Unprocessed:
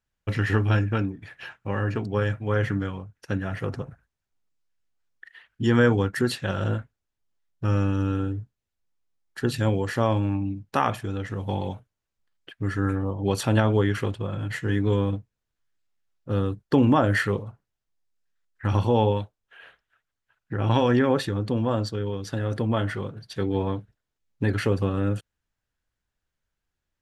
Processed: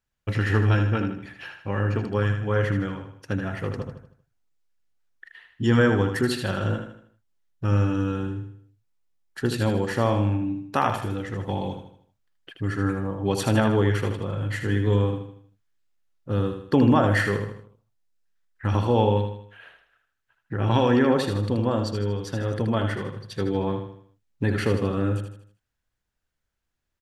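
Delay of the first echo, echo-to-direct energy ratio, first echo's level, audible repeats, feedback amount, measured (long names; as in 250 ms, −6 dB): 78 ms, −6.0 dB, −7.0 dB, 4, 43%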